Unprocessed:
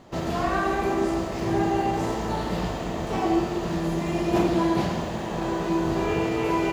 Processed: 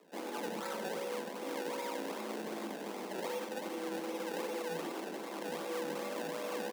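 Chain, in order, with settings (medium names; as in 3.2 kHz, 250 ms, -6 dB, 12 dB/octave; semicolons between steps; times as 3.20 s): peak limiter -18 dBFS, peak gain reduction 7.5 dB; decimation with a swept rate 30×, swing 100% 2.6 Hz; feedback comb 280 Hz, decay 0.43 s, harmonics odd, mix 70%; frequency shift +160 Hz; delay 92 ms -10.5 dB; trim -3.5 dB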